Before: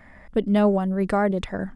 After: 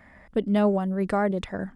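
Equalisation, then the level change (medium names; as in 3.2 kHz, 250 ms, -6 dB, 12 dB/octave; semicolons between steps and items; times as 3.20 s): high-pass 46 Hz 6 dB/octave; -2.5 dB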